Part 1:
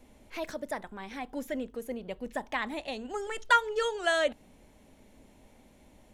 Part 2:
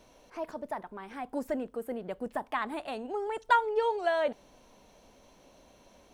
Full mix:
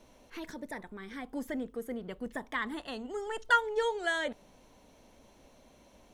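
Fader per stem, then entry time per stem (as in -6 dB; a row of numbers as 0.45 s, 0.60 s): -5.5 dB, -3.0 dB; 0.00 s, 0.00 s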